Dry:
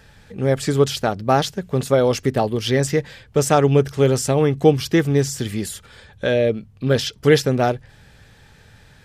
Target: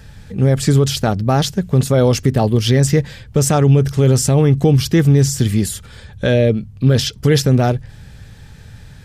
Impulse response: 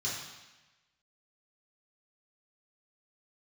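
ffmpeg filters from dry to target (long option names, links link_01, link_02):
-af "bass=frequency=250:gain=10,treble=frequency=4000:gain=4,alimiter=level_in=4.5dB:limit=-1dB:release=50:level=0:latency=1,volume=-2dB"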